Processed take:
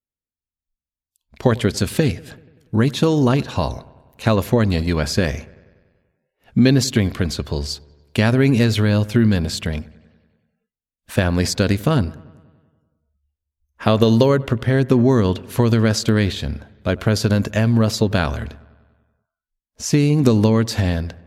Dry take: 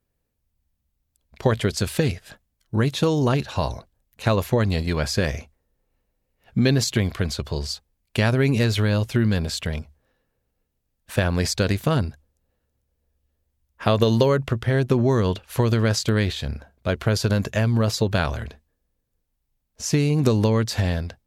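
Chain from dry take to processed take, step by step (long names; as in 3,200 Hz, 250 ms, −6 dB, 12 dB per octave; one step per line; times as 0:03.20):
on a send: delay with a low-pass on its return 96 ms, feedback 64%, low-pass 2,300 Hz, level −22 dB
on the sum: noise reduction from a noise print of the clip's start 25 dB
parametric band 250 Hz +5 dB 0.76 octaves
level +2.5 dB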